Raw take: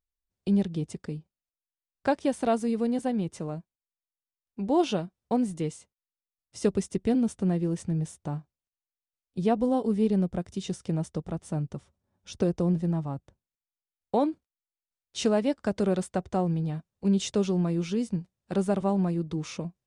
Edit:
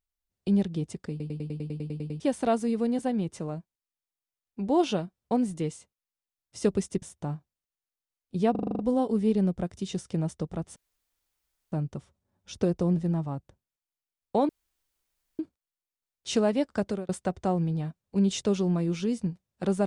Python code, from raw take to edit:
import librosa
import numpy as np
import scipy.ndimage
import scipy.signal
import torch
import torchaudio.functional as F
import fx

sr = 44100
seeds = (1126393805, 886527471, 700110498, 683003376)

y = fx.edit(x, sr, fx.stutter_over(start_s=1.1, slice_s=0.1, count=11),
    fx.cut(start_s=7.02, length_s=1.03),
    fx.stutter(start_s=9.54, slice_s=0.04, count=8),
    fx.insert_room_tone(at_s=11.51, length_s=0.96),
    fx.insert_room_tone(at_s=14.28, length_s=0.9),
    fx.fade_out_span(start_s=15.72, length_s=0.26), tone=tone)